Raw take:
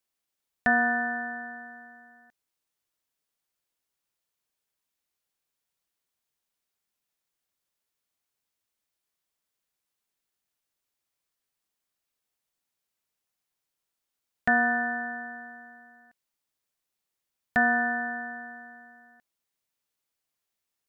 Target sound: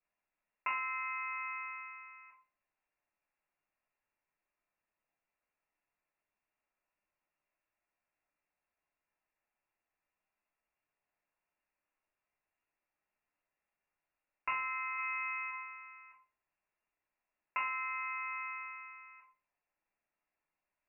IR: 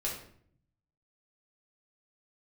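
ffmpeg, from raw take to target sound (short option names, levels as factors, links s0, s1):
-filter_complex "[0:a]acompressor=threshold=0.0141:ratio=6,lowpass=f=2400:t=q:w=0.5098,lowpass=f=2400:t=q:w=0.6013,lowpass=f=2400:t=q:w=0.9,lowpass=f=2400:t=q:w=2.563,afreqshift=-2800,asplit=3[s0][s1][s2];[s0]afade=t=out:st=14.97:d=0.02[s3];[s1]aemphasis=mode=production:type=riaa,afade=t=in:st=14.97:d=0.02,afade=t=out:st=15.5:d=0.02[s4];[s2]afade=t=in:st=15.5:d=0.02[s5];[s3][s4][s5]amix=inputs=3:normalize=0[s6];[1:a]atrim=start_sample=2205,asetrate=70560,aresample=44100[s7];[s6][s7]afir=irnorm=-1:irlink=0,volume=1.33"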